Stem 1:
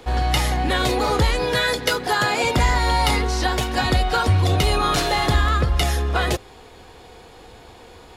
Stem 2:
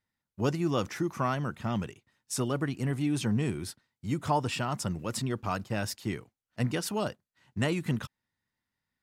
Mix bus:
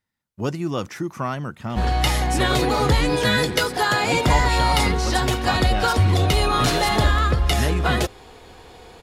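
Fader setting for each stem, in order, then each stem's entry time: 0.0, +3.0 dB; 1.70, 0.00 s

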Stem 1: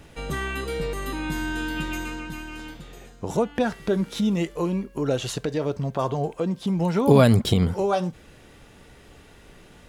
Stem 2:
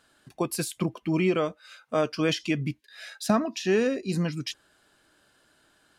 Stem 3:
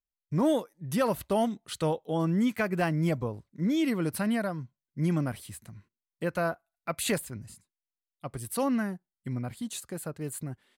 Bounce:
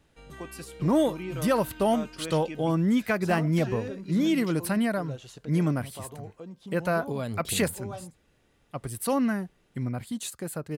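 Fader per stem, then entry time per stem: -17.0, -12.5, +2.5 dB; 0.00, 0.00, 0.50 s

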